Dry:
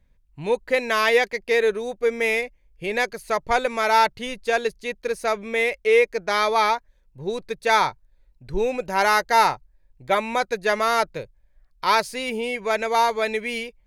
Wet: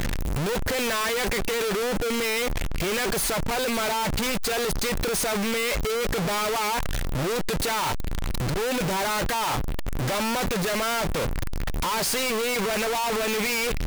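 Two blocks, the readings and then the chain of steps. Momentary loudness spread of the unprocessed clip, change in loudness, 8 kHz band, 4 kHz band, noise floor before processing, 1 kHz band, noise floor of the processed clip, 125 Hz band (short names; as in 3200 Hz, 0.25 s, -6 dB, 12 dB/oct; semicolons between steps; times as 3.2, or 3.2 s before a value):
10 LU, -3.0 dB, +8.5 dB, +2.0 dB, -60 dBFS, -6.5 dB, -25 dBFS, +12.5 dB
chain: infinite clipping; gain -2 dB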